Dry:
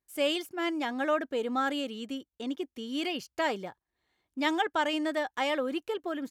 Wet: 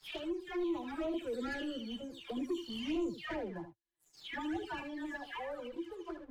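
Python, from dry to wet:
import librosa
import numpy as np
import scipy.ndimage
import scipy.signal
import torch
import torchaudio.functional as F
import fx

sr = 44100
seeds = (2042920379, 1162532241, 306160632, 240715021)

y = fx.spec_delay(x, sr, highs='early', ms=392)
y = fx.doppler_pass(y, sr, speed_mps=16, closest_m=14.0, pass_at_s=2.32)
y = fx.comb_fb(y, sr, f0_hz=340.0, decay_s=0.15, harmonics='odd', damping=0.0, mix_pct=80)
y = fx.dynamic_eq(y, sr, hz=230.0, q=1.3, threshold_db=-57.0, ratio=4.0, max_db=-3)
y = fx.leveller(y, sr, passes=3)
y = fx.tilt_eq(y, sr, slope=-2.0)
y = fx.env_flanger(y, sr, rest_ms=7.8, full_db=-33.0)
y = y + 10.0 ** (-11.0 / 20.0) * np.pad(y, (int(76 * sr / 1000.0), 0))[:len(y)]
y = fx.band_squash(y, sr, depth_pct=40)
y = y * 10.0 ** (1.5 / 20.0)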